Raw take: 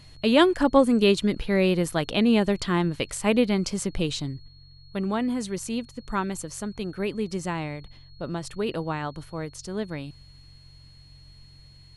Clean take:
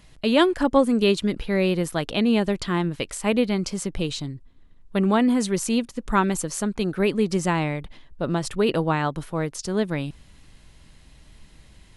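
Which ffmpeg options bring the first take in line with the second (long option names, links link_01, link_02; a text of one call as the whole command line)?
ffmpeg -i in.wav -af "bandreject=frequency=45.3:width_type=h:width=4,bandreject=frequency=90.6:width_type=h:width=4,bandreject=frequency=135.9:width_type=h:width=4,bandreject=frequency=4300:width=30,asetnsamples=nb_out_samples=441:pad=0,asendcmd='4.48 volume volume 7dB',volume=0dB" out.wav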